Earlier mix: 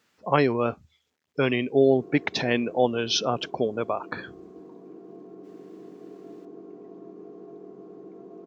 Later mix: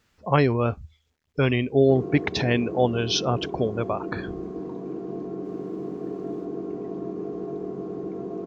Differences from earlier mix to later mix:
background +11.0 dB; master: remove HPF 200 Hz 12 dB/oct

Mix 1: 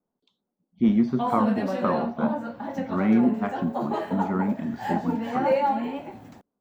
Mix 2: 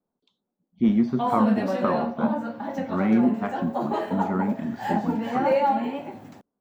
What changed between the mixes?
background: add HPF 100 Hz; reverb: on, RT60 0.55 s

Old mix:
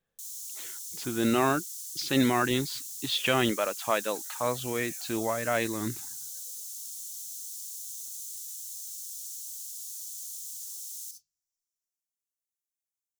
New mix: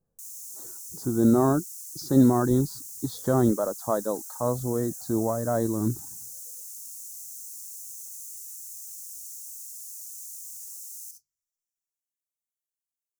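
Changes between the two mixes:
speech: add low shelf 370 Hz +10 dB; master: add Butterworth band-stop 2600 Hz, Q 0.53

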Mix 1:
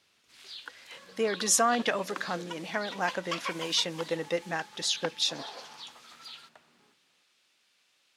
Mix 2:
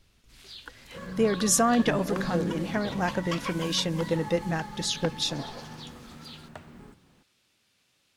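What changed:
second sound +11.5 dB; master: remove weighting filter A

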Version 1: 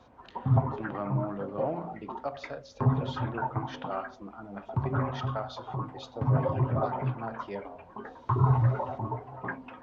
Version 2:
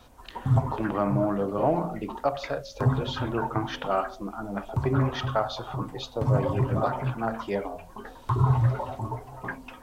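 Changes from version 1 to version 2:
speech +9.0 dB; background: remove BPF 100–2000 Hz

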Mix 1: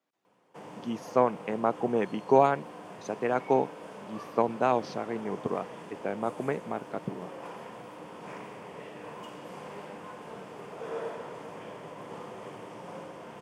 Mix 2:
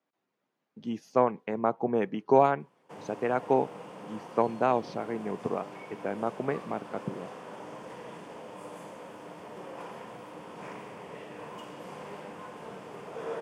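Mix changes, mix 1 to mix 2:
speech: add LPF 3800 Hz 6 dB/oct; background: entry +2.35 s

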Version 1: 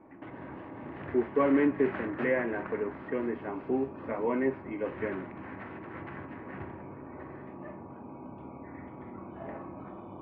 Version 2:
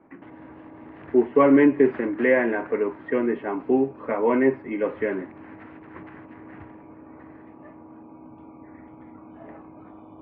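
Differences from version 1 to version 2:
speech +9.0 dB; reverb: off

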